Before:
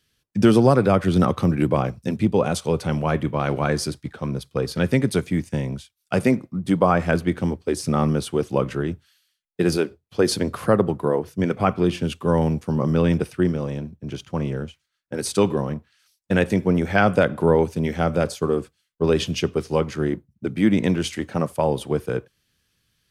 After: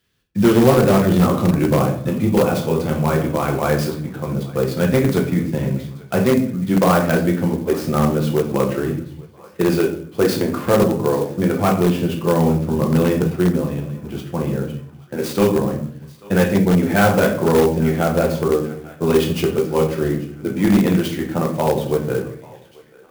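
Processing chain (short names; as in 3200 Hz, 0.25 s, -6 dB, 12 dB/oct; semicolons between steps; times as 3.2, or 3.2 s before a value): HPF 48 Hz 6 dB/oct; high shelf 4800 Hz -7 dB; on a send: thinning echo 0.839 s, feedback 62%, high-pass 680 Hz, level -20.5 dB; on the sum: shoebox room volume 73 m³, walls mixed, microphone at 0.78 m; in parallel at -11 dB: wrapped overs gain 8 dB; on the sum: clock jitter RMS 0.028 ms; gain -1.5 dB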